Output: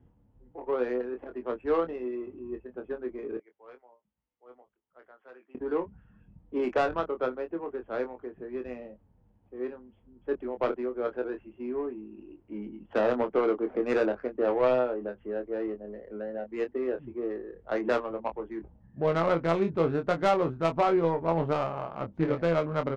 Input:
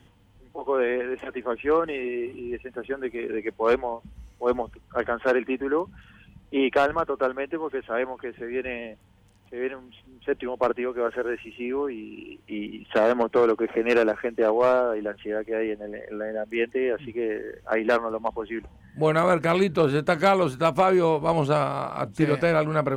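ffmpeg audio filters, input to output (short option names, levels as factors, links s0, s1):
-filter_complex "[0:a]asettb=1/sr,asplit=3[s0][s1][s2];[s0]atrim=end=3.374[s3];[s1]atrim=start=3.37:end=5.55,asetpts=PTS-STARTPTS,afade=t=in:d=0.004:c=qsin,afade=t=out:st=2.176:d=0.004:c=qsin,aderivative[s4];[s2]atrim=start=5.546[s5];[s3][s4]acrossfade=d=0.004:c1=hsin:c2=qsin[s6];[s6][s5]acrossfade=d=0.004:c1=qsin:c2=hsin,adynamicsmooth=sensitivity=0.5:basefreq=830,asplit=2[s7][s8];[s8]adelay=24,volume=0.447[s9];[s7][s9]amix=inputs=2:normalize=0,volume=0.562"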